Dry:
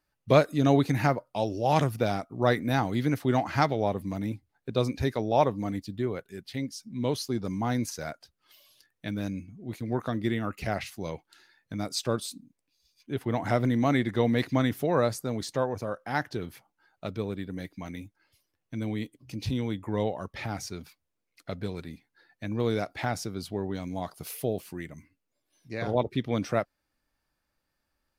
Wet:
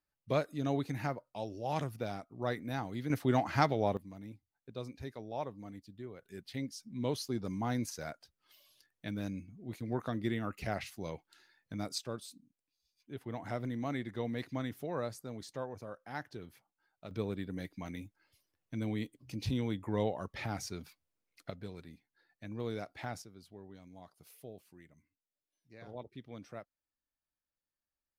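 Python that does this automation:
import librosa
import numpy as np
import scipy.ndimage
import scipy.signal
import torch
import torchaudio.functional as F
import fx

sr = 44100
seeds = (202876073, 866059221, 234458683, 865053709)

y = fx.gain(x, sr, db=fx.steps((0.0, -11.5), (3.1, -4.0), (3.97, -16.0), (6.22, -6.0), (11.98, -12.5), (17.11, -4.0), (21.5, -11.0), (23.22, -19.5)))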